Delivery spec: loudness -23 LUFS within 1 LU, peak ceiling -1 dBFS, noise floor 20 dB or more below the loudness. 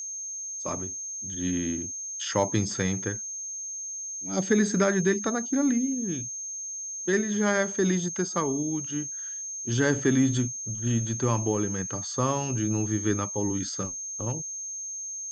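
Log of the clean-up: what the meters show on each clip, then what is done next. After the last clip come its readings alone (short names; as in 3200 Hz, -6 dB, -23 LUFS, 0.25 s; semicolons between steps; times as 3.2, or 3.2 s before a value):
steady tone 6400 Hz; tone level -33 dBFS; loudness -27.5 LUFS; peak -9.5 dBFS; loudness target -23.0 LUFS
-> notch 6400 Hz, Q 30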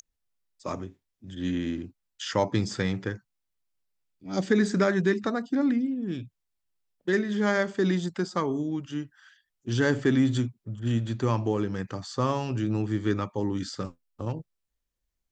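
steady tone none; loudness -28.0 LUFS; peak -10.0 dBFS; loudness target -23.0 LUFS
-> gain +5 dB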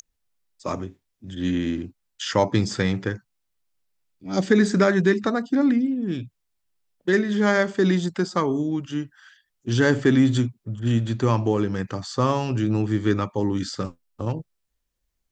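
loudness -23.0 LUFS; peak -5.0 dBFS; noise floor -76 dBFS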